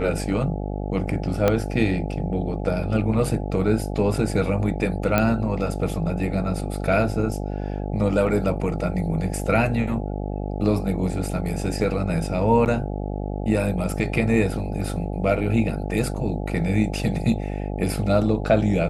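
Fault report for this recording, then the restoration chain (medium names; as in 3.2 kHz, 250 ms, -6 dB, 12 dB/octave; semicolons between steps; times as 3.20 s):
buzz 50 Hz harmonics 17 -28 dBFS
1.48 s: pop -6 dBFS
5.18 s: pop -6 dBFS
12.65–12.66 s: dropout 9.3 ms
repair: de-click; de-hum 50 Hz, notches 17; interpolate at 12.65 s, 9.3 ms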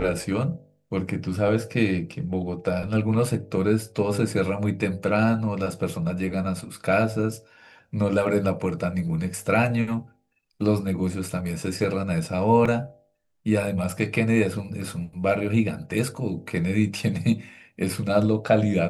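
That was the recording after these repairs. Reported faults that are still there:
1.48 s: pop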